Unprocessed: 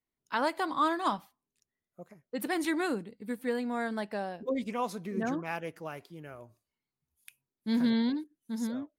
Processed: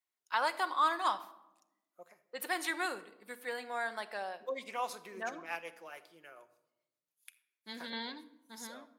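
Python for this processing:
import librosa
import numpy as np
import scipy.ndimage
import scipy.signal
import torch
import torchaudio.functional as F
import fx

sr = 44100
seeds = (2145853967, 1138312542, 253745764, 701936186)

y = fx.rotary(x, sr, hz=7.0, at=(5.29, 7.93))
y = scipy.signal.sosfilt(scipy.signal.butter(2, 740.0, 'highpass', fs=sr, output='sos'), y)
y = fx.room_shoebox(y, sr, seeds[0], volume_m3=3600.0, walls='furnished', distance_m=0.95)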